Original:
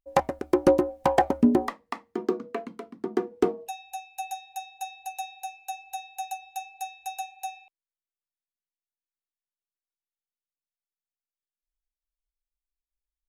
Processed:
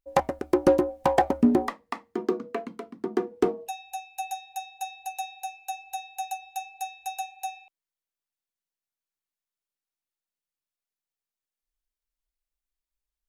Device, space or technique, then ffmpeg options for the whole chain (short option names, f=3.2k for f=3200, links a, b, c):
parallel distortion: -filter_complex "[0:a]asplit=2[a][b];[b]asoftclip=type=hard:threshold=-25dB,volume=-10.5dB[c];[a][c]amix=inputs=2:normalize=0,volume=-1dB"